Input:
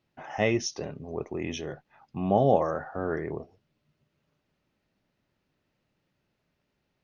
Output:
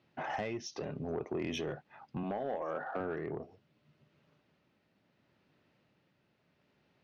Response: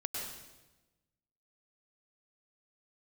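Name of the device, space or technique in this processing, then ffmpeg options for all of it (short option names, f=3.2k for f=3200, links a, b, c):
AM radio: -filter_complex "[0:a]asettb=1/sr,asplit=3[a][b][c];[a]atrim=end=2.234[d];[b]atrim=start=2.23:end=3,asetpts=PTS-STARTPTS,afade=t=in:d=0.004:c=qsin,afade=t=out:st=0.766:d=0.004:c=qsin,highpass=240[e];[c]atrim=start=2.996[f];[d][e]acrossfade=d=0.004:c1=hsin:c2=qsin[g];[g][f]acrossfade=d=0.004:c1=qsin:c2=hsin,highpass=100,lowpass=4.5k,acompressor=threshold=-36dB:ratio=8,asoftclip=type=tanh:threshold=-33dB,tremolo=f=0.72:d=0.28,volume=6dB"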